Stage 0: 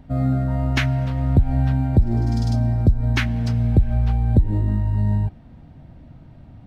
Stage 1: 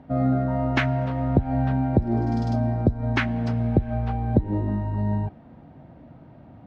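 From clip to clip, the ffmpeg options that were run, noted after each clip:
ffmpeg -i in.wav -af "bandpass=frequency=620:width_type=q:width=0.55:csg=0,volume=4.5dB" out.wav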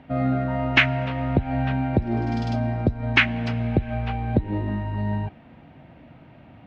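ffmpeg -i in.wav -af "equalizer=frequency=2600:width=1:gain=14.5,volume=-1.5dB" out.wav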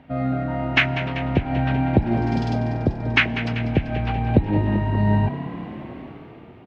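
ffmpeg -i in.wav -filter_complex "[0:a]dynaudnorm=framelen=200:gausssize=9:maxgain=14dB,asplit=9[link_01][link_02][link_03][link_04][link_05][link_06][link_07][link_08][link_09];[link_02]adelay=194,afreqshift=37,volume=-12.5dB[link_10];[link_03]adelay=388,afreqshift=74,volume=-16.2dB[link_11];[link_04]adelay=582,afreqshift=111,volume=-20dB[link_12];[link_05]adelay=776,afreqshift=148,volume=-23.7dB[link_13];[link_06]adelay=970,afreqshift=185,volume=-27.5dB[link_14];[link_07]adelay=1164,afreqshift=222,volume=-31.2dB[link_15];[link_08]adelay=1358,afreqshift=259,volume=-35dB[link_16];[link_09]adelay=1552,afreqshift=296,volume=-38.7dB[link_17];[link_01][link_10][link_11][link_12][link_13][link_14][link_15][link_16][link_17]amix=inputs=9:normalize=0,volume=-1dB" out.wav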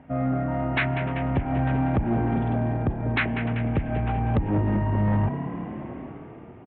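ffmpeg -i in.wav -af "lowpass=1900,aresample=8000,asoftclip=type=tanh:threshold=-17dB,aresample=44100" out.wav

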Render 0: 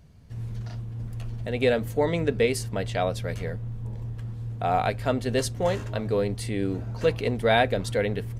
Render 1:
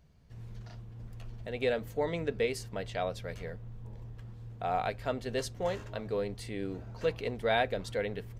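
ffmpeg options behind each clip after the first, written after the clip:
ffmpeg -i in.wav -af "equalizer=frequency=100:width_type=o:width=0.67:gain=-7,equalizer=frequency=250:width_type=o:width=0.67:gain=-4,equalizer=frequency=10000:width_type=o:width=0.67:gain=-6,volume=-7dB" out.wav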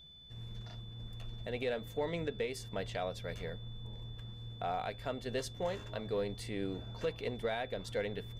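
ffmpeg -i in.wav -af "alimiter=level_in=0.5dB:limit=-24dB:level=0:latency=1:release=326,volume=-0.5dB,aeval=exprs='0.0596*(cos(1*acos(clip(val(0)/0.0596,-1,1)))-cos(1*PI/2))+0.00119*(cos(6*acos(clip(val(0)/0.0596,-1,1)))-cos(6*PI/2))':channel_layout=same,aeval=exprs='val(0)+0.00224*sin(2*PI*3500*n/s)':channel_layout=same,volume=-1dB" out.wav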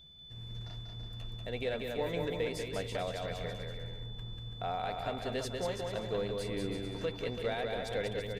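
ffmpeg -i in.wav -af "aecho=1:1:190|332.5|439.4|519.5|579.6:0.631|0.398|0.251|0.158|0.1" out.wav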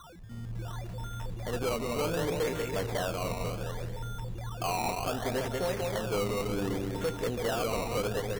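ffmpeg -i in.wav -filter_complex "[0:a]acrossover=split=340[link_01][link_02];[link_02]acrusher=samples=18:mix=1:aa=0.000001:lfo=1:lforange=18:lforate=0.67[link_03];[link_01][link_03]amix=inputs=2:normalize=0,volume=31dB,asoftclip=hard,volume=-31dB,volume=5.5dB" out.wav

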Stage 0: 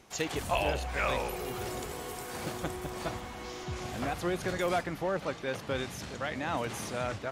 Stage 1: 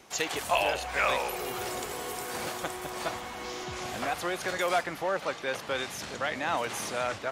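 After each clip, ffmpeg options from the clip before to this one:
ffmpeg -i in.wav -filter_complex "[0:a]lowshelf=frequency=180:gain=-10.5,acrossover=split=490|6500[link_01][link_02][link_03];[link_01]alimiter=level_in=14.5dB:limit=-24dB:level=0:latency=1:release=443,volume=-14.5dB[link_04];[link_04][link_02][link_03]amix=inputs=3:normalize=0,volume=5dB" out.wav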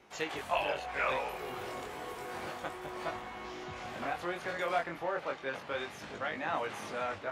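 ffmpeg -i in.wav -af "bass=frequency=250:gain=-1,treble=frequency=4000:gain=-12,flanger=delay=19:depth=4.8:speed=0.31,volume=-1.5dB" out.wav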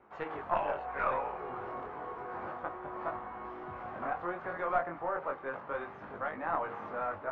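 ffmpeg -i in.wav -af "aeval=exprs='0.126*(cos(1*acos(clip(val(0)/0.126,-1,1)))-cos(1*PI/2))+0.0316*(cos(4*acos(clip(val(0)/0.126,-1,1)))-cos(4*PI/2))+0.0126*(cos(6*acos(clip(val(0)/0.126,-1,1)))-cos(6*PI/2))':channel_layout=same,lowpass=frequency=1200:width_type=q:width=1.7,bandreject=frequency=78.3:width_type=h:width=4,bandreject=frequency=156.6:width_type=h:width=4,bandreject=frequency=234.9:width_type=h:width=4,bandreject=frequency=313.2:width_type=h:width=4,bandreject=frequency=391.5:width_type=h:width=4,bandreject=frequency=469.8:width_type=h:width=4,bandreject=frequency=548.1:width_type=h:width=4,bandreject=frequency=626.4:width_type=h:width=4,bandreject=frequency=704.7:width_type=h:width=4,bandreject=frequency=783:width_type=h:width=4,bandreject=frequency=861.3:width_type=h:width=4,bandreject=frequency=939.6:width_type=h:width=4,bandreject=frequency=1017.9:width_type=h:width=4,volume=-1.5dB" out.wav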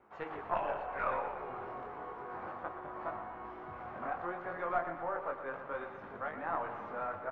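ffmpeg -i in.wav -af "aecho=1:1:119|238|357|476|595|714|833:0.316|0.183|0.106|0.0617|0.0358|0.0208|0.012,volume=-3dB" out.wav

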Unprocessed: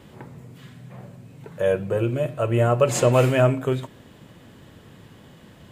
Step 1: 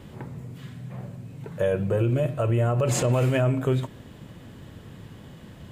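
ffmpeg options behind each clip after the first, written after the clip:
ffmpeg -i in.wav -af "lowshelf=frequency=180:gain=7.5,alimiter=limit=-15dB:level=0:latency=1:release=61" out.wav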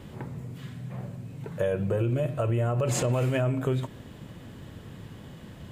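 ffmpeg -i in.wav -af "acompressor=threshold=-25dB:ratio=2" out.wav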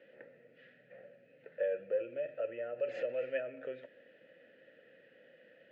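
ffmpeg -i in.wav -filter_complex "[0:a]asplit=3[link_01][link_02][link_03];[link_01]bandpass=frequency=530:width_type=q:width=8,volume=0dB[link_04];[link_02]bandpass=frequency=1840:width_type=q:width=8,volume=-6dB[link_05];[link_03]bandpass=frequency=2480:width_type=q:width=8,volume=-9dB[link_06];[link_04][link_05][link_06]amix=inputs=3:normalize=0,highpass=230,equalizer=frequency=390:width_type=q:width=4:gain=-5,equalizer=frequency=890:width_type=q:width=4:gain=-5,equalizer=frequency=1400:width_type=q:width=4:gain=8,equalizer=frequency=2000:width_type=q:width=4:gain=3,equalizer=frequency=3700:width_type=q:width=4:gain=-4,lowpass=frequency=4800:width=0.5412,lowpass=frequency=4800:width=1.3066" out.wav

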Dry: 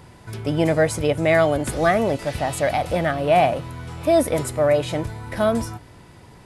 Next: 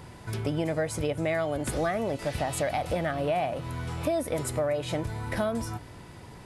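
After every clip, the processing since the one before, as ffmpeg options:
ffmpeg -i in.wav -af "acompressor=threshold=-26dB:ratio=5" out.wav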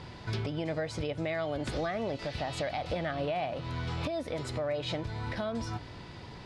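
ffmpeg -i in.wav -af "lowpass=frequency=4400:width_type=q:width=1.9,alimiter=limit=-24dB:level=0:latency=1:release=409" out.wav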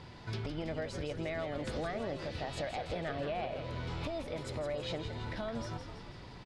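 ffmpeg -i in.wav -filter_complex "[0:a]asplit=8[link_01][link_02][link_03][link_04][link_05][link_06][link_07][link_08];[link_02]adelay=164,afreqshift=-71,volume=-8dB[link_09];[link_03]adelay=328,afreqshift=-142,volume=-12.7dB[link_10];[link_04]adelay=492,afreqshift=-213,volume=-17.5dB[link_11];[link_05]adelay=656,afreqshift=-284,volume=-22.2dB[link_12];[link_06]adelay=820,afreqshift=-355,volume=-26.9dB[link_13];[link_07]adelay=984,afreqshift=-426,volume=-31.7dB[link_14];[link_08]adelay=1148,afreqshift=-497,volume=-36.4dB[link_15];[link_01][link_09][link_10][link_11][link_12][link_13][link_14][link_15]amix=inputs=8:normalize=0,volume=-5dB" out.wav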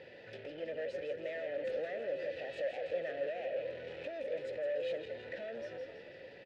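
ffmpeg -i in.wav -filter_complex "[0:a]asoftclip=type=tanh:threshold=-39dB,asplit=3[link_01][link_02][link_03];[link_01]bandpass=frequency=530:width_type=q:width=8,volume=0dB[link_04];[link_02]bandpass=frequency=1840:width_type=q:width=8,volume=-6dB[link_05];[link_03]bandpass=frequency=2480:width_type=q:width=8,volume=-9dB[link_06];[link_04][link_05][link_06]amix=inputs=3:normalize=0,volume=13dB" out.wav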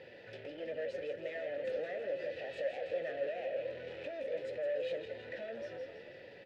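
ffmpeg -i in.wav -af "flanger=delay=8.1:depth=3.2:regen=-61:speed=1.3:shape=sinusoidal,volume=4dB" out.wav

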